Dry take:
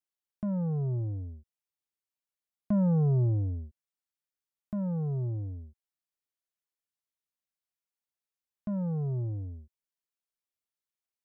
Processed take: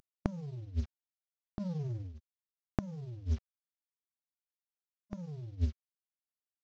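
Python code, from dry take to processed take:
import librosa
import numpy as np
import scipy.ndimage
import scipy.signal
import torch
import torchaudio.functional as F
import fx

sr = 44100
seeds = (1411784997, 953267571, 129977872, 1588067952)

p1 = fx.cvsd(x, sr, bps=32000)
p2 = fx.gate_flip(p1, sr, shuts_db=-34.0, range_db=-29)
p3 = np.clip(10.0 ** (31.5 / 20.0) * p2, -1.0, 1.0) / 10.0 ** (31.5 / 20.0)
p4 = p2 + F.gain(torch.from_numpy(p3), -4.5).numpy()
p5 = fx.stretch_grains(p4, sr, factor=0.59, grain_ms=98.0)
y = F.gain(torch.from_numpy(p5), 14.5).numpy()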